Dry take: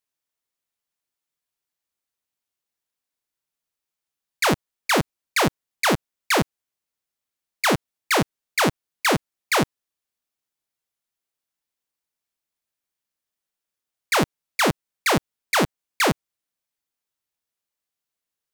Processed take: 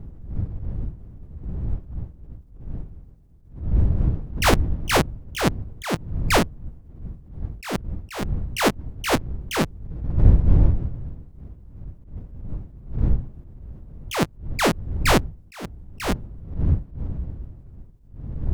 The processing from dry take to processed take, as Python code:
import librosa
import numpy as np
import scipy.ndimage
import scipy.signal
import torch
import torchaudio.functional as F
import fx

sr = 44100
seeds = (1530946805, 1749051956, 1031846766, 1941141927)

y = fx.pitch_ramps(x, sr, semitones=6.0, every_ms=416)
y = fx.dmg_wind(y, sr, seeds[0], corner_hz=82.0, level_db=-27.0)
y = fx.attack_slew(y, sr, db_per_s=140.0)
y = y * librosa.db_to_amplitude(3.5)